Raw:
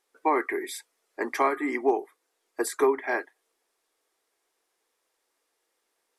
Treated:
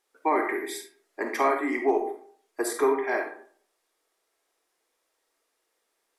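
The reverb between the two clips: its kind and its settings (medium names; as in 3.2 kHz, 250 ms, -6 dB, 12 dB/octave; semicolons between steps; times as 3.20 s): algorithmic reverb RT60 0.54 s, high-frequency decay 0.55×, pre-delay 5 ms, DRR 3 dB; trim -1 dB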